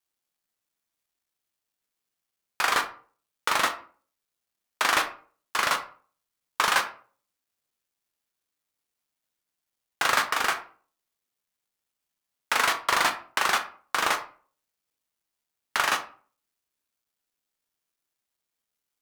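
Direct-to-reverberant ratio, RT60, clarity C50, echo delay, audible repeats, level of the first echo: 6.5 dB, 0.45 s, 12.5 dB, none, none, none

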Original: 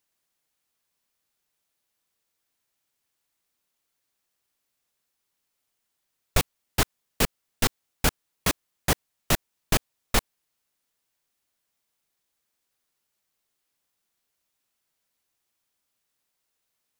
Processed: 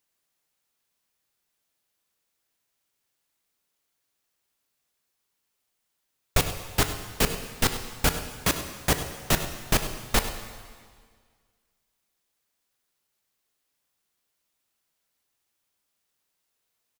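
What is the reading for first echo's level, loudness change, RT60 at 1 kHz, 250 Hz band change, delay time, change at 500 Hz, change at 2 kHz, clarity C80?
-14.5 dB, +0.5 dB, 1.8 s, +0.5 dB, 99 ms, +1.0 dB, +1.0 dB, 9.0 dB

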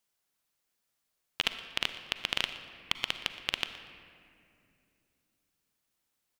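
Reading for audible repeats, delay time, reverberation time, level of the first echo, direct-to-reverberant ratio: 1, 0.119 s, 2.6 s, -18.0 dB, 9.0 dB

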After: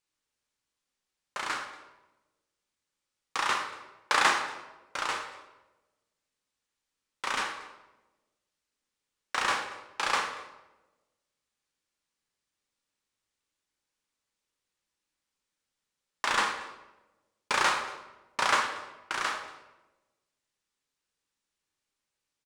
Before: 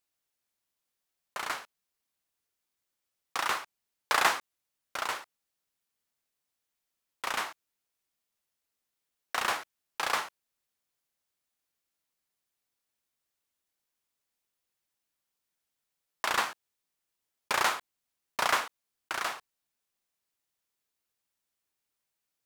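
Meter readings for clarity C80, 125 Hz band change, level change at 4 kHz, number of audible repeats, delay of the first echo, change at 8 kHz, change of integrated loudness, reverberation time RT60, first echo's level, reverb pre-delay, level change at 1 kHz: 9.5 dB, +3.0 dB, +2.0 dB, 1, 0.233 s, +0.5 dB, +1.5 dB, 1.1 s, -21.5 dB, 16 ms, +2.0 dB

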